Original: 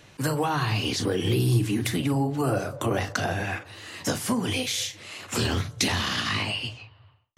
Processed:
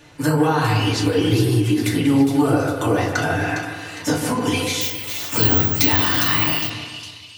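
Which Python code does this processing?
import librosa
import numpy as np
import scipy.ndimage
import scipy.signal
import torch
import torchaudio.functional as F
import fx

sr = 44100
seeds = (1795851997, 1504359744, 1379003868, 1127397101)

y = fx.echo_split(x, sr, split_hz=2900.0, low_ms=148, high_ms=408, feedback_pct=52, wet_db=-6.5)
y = fx.rev_fdn(y, sr, rt60_s=0.4, lf_ratio=0.8, hf_ratio=0.45, size_ms=20.0, drr_db=-2.5)
y = fx.resample_bad(y, sr, factor=2, down='filtered', up='zero_stuff', at=(4.81, 6.7))
y = fx.end_taper(y, sr, db_per_s=120.0)
y = y * 10.0 ** (1.0 / 20.0)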